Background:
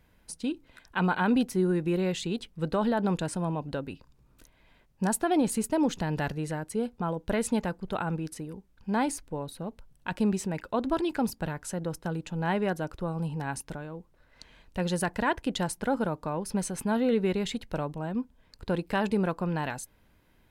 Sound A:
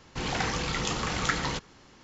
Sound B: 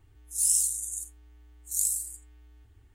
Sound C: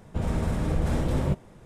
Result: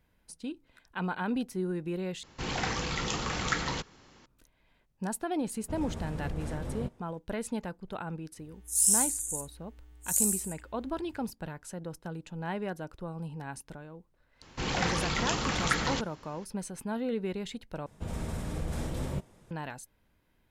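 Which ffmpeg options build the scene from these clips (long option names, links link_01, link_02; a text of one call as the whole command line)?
ffmpeg -i bed.wav -i cue0.wav -i cue1.wav -i cue2.wav -filter_complex "[1:a]asplit=2[link_01][link_02];[3:a]asplit=2[link_03][link_04];[0:a]volume=-7dB[link_05];[link_04]highshelf=frequency=3200:gain=9[link_06];[link_05]asplit=3[link_07][link_08][link_09];[link_07]atrim=end=2.234[link_10];[link_01]atrim=end=2.03,asetpts=PTS-STARTPTS,volume=-2.5dB[link_11];[link_08]atrim=start=4.256:end=17.864[link_12];[link_06]atrim=end=1.65,asetpts=PTS-STARTPTS,volume=-9dB[link_13];[link_09]atrim=start=19.506[link_14];[link_03]atrim=end=1.65,asetpts=PTS-STARTPTS,volume=-11.5dB,afade=type=in:duration=0.004:curve=hsin,afade=type=out:start_time=1.646:duration=0.004:curve=hsin,adelay=5540[link_15];[2:a]atrim=end=2.94,asetpts=PTS-STARTPTS,afade=type=in:duration=0.004:curve=hsin,afade=type=out:start_time=2.936:duration=0.004:curve=hsin,adelay=8370[link_16];[link_02]atrim=end=2.03,asetpts=PTS-STARTPTS,volume=-0.5dB,afade=type=in:duration=0.004:curve=hsin,afade=type=out:start_time=2.026:duration=0.004:curve=hsin,adelay=14420[link_17];[link_10][link_11]acrossfade=duration=0.004:curve1=hsin:curve2=hsin[link_18];[link_18][link_12]acrossfade=duration=0.004:curve1=hsin:curve2=hsin[link_19];[link_19][link_13]acrossfade=duration=0.004:curve1=hsin:curve2=hsin[link_20];[link_20][link_14]acrossfade=duration=0.004:curve1=hsin:curve2=hsin[link_21];[link_21][link_15][link_16][link_17]amix=inputs=4:normalize=0" out.wav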